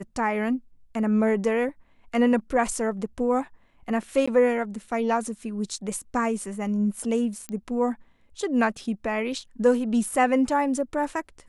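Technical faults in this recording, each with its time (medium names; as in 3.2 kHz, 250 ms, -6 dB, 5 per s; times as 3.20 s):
4.26–4.28 s: dropout 15 ms
7.49 s: pop -19 dBFS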